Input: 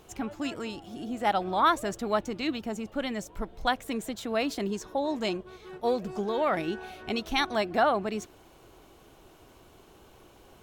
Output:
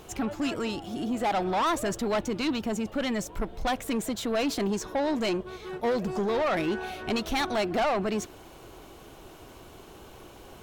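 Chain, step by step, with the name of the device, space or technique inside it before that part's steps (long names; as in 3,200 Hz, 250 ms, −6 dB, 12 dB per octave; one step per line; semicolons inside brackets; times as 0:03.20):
saturation between pre-emphasis and de-emphasis (high-shelf EQ 6,600 Hz +11 dB; soft clipping −29.5 dBFS, distortion −6 dB; high-shelf EQ 6,600 Hz −11 dB)
level +7 dB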